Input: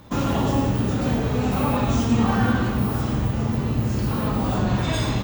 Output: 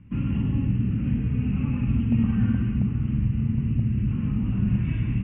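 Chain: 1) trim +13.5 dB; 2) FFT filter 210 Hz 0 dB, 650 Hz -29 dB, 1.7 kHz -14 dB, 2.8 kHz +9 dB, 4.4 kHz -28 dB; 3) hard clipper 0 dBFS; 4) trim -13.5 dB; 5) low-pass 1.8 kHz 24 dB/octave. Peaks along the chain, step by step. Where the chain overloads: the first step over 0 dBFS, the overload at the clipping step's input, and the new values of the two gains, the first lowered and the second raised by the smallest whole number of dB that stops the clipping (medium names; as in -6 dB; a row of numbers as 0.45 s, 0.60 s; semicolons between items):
+5.5 dBFS, +3.5 dBFS, 0.0 dBFS, -13.5 dBFS, -13.5 dBFS; step 1, 3.5 dB; step 1 +9.5 dB, step 4 -9.5 dB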